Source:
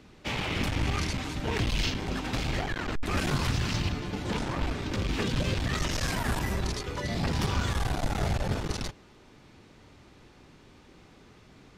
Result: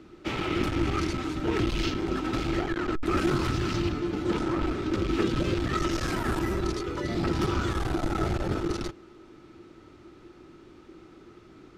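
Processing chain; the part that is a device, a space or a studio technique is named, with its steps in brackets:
inside a helmet (high-shelf EQ 5,300 Hz −4.5 dB; hollow resonant body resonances 340/1,300 Hz, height 16 dB, ringing for 60 ms)
level −1.5 dB

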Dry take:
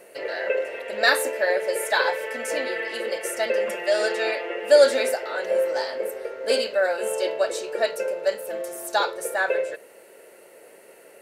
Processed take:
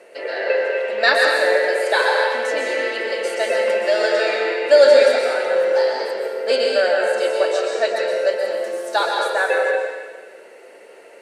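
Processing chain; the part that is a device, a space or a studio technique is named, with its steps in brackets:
supermarket ceiling speaker (band-pass filter 280–5,800 Hz; convolution reverb RT60 1.4 s, pre-delay 114 ms, DRR 0 dB)
level +3 dB

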